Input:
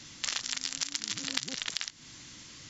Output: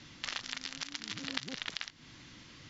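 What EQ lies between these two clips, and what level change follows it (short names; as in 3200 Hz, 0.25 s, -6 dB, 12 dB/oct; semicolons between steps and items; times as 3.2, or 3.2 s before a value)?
air absorption 180 m; 0.0 dB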